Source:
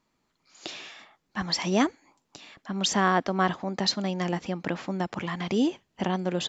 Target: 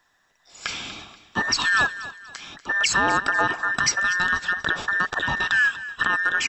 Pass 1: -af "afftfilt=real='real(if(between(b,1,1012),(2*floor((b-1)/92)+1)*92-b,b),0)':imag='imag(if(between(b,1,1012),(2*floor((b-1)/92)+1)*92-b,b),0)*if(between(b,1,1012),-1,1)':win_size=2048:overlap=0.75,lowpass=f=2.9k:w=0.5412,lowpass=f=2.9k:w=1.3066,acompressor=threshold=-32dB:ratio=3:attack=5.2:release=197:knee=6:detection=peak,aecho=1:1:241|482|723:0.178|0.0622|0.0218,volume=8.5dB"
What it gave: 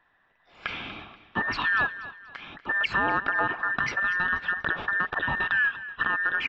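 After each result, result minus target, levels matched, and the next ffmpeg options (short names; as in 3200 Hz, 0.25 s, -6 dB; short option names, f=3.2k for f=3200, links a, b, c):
4000 Hz band -6.0 dB; compressor: peak gain reduction +4.5 dB
-af "afftfilt=real='real(if(between(b,1,1012),(2*floor((b-1)/92)+1)*92-b,b),0)':imag='imag(if(between(b,1,1012),(2*floor((b-1)/92)+1)*92-b,b),0)*if(between(b,1,1012),-1,1)':win_size=2048:overlap=0.75,acompressor=threshold=-32dB:ratio=3:attack=5.2:release=197:knee=6:detection=peak,aecho=1:1:241|482|723:0.178|0.0622|0.0218,volume=8.5dB"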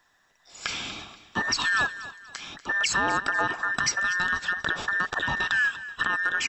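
compressor: peak gain reduction +4.5 dB
-af "afftfilt=real='real(if(between(b,1,1012),(2*floor((b-1)/92)+1)*92-b,b),0)':imag='imag(if(between(b,1,1012),(2*floor((b-1)/92)+1)*92-b,b),0)*if(between(b,1,1012),-1,1)':win_size=2048:overlap=0.75,acompressor=threshold=-25.5dB:ratio=3:attack=5.2:release=197:knee=6:detection=peak,aecho=1:1:241|482|723:0.178|0.0622|0.0218,volume=8.5dB"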